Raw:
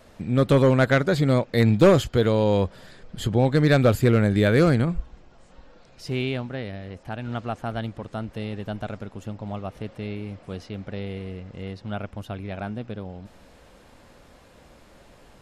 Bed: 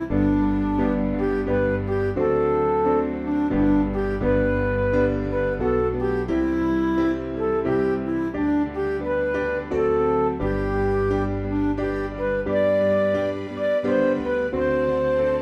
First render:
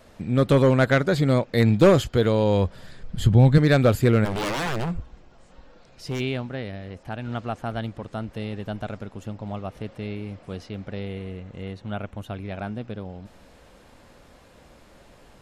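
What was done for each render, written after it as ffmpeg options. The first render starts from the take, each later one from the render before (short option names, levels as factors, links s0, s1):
-filter_complex "[0:a]asettb=1/sr,asplit=3[s0][s1][s2];[s0]atrim=end=2.424[s3];[s1]atrim=start=2.42:end=3.58,asetpts=PTS-STARTPTS,afade=t=in:d=0.004:c=qsin,afade=t=out:st=1.156:d=0.004:c=qsin,asubboost=boost=9:cutoff=200[s4];[s2]atrim=start=3.576[s5];[s3][s4]acrossfade=d=0.004:c1=hsin:c2=qsin[s6];[s6][s5]acrossfade=d=0.004:c1=qsin:c2=hsin,asplit=3[s7][s8][s9];[s7]afade=t=out:st=4.24:d=0.02[s10];[s8]aeval=exprs='0.0841*(abs(mod(val(0)/0.0841+3,4)-2)-1)':c=same,afade=t=in:st=4.24:d=0.02,afade=t=out:st=6.19:d=0.02[s11];[s9]afade=t=in:st=6.19:d=0.02[s12];[s10][s11][s12]amix=inputs=3:normalize=0,asettb=1/sr,asplit=3[s13][s14][s15];[s13]atrim=end=11.074[s16];[s14]atrim=start=11.07:end=12.28,asetpts=PTS-STARTPTS,afade=t=in:d=0.004:c=qsin,afade=t=out:st=1.206:d=0.004:c=qsin,equalizer=f=5000:w=7.8:g=-12[s17];[s15]atrim=start=12.276[s18];[s16][s17]acrossfade=d=0.004:c1=hsin:c2=qsin[s19];[s19][s18]acrossfade=d=0.004:c1=qsin:c2=hsin"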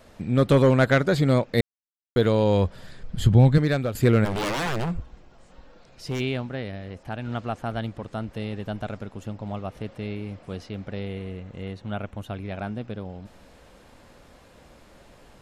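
-filter_complex "[0:a]asplit=4[s0][s1][s2][s3];[s0]atrim=end=1.61,asetpts=PTS-STARTPTS,afade=t=out:st=1.606:d=0.004:c=hsin[s4];[s1]atrim=start=1.61:end=2.16,asetpts=PTS-STARTPTS,volume=0[s5];[s2]atrim=start=2.16:end=3.95,asetpts=PTS-STARTPTS,afade=t=in:d=0.004:c=hsin,afade=t=out:st=1.23:d=0.56:silence=0.223872[s6];[s3]atrim=start=3.95,asetpts=PTS-STARTPTS,afade=t=in:d=0.004:c=hsin:silence=0.223872[s7];[s4][s5][s6][s7]concat=n=4:v=0:a=1"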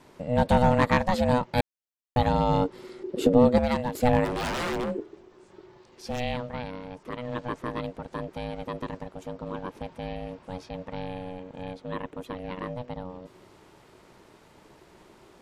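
-af "aeval=exprs='val(0)*sin(2*PI*370*n/s)':c=same"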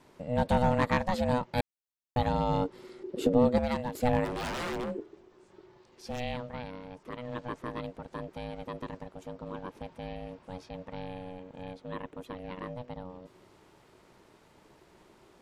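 -af "volume=0.562"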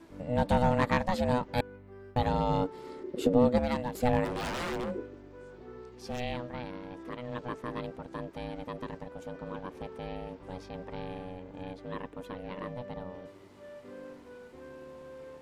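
-filter_complex "[1:a]volume=0.0501[s0];[0:a][s0]amix=inputs=2:normalize=0"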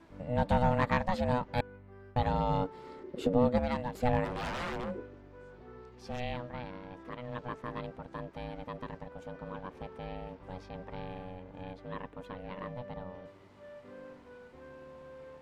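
-af "lowpass=f=3100:p=1,equalizer=f=340:t=o:w=1:g=-6.5"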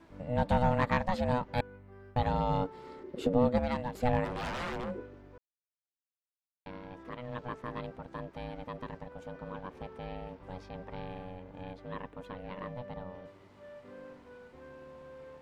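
-filter_complex "[0:a]asplit=3[s0][s1][s2];[s0]atrim=end=5.38,asetpts=PTS-STARTPTS,afade=t=out:st=5.376:d=0.004:c=hsin[s3];[s1]atrim=start=5.38:end=6.66,asetpts=PTS-STARTPTS,volume=0[s4];[s2]atrim=start=6.66,asetpts=PTS-STARTPTS,afade=t=in:d=0.004:c=hsin[s5];[s3][s4][s5]concat=n=3:v=0:a=1"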